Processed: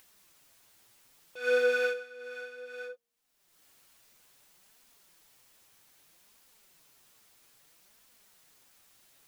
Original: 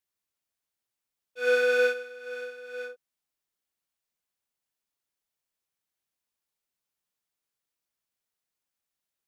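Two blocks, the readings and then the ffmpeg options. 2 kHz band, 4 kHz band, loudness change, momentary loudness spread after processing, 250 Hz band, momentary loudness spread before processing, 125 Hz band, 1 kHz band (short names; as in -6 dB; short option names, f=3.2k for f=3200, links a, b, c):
-4.0 dB, -3.5 dB, -5.0 dB, 18 LU, -2.5 dB, 16 LU, n/a, -3.5 dB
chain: -af "flanger=delay=3.7:depth=5.9:regen=38:speed=0.62:shape=triangular,bandreject=f=235.5:t=h:w=4,bandreject=f=471:t=h:w=4,bandreject=f=706.5:t=h:w=4,acompressor=mode=upward:threshold=-40dB:ratio=2.5"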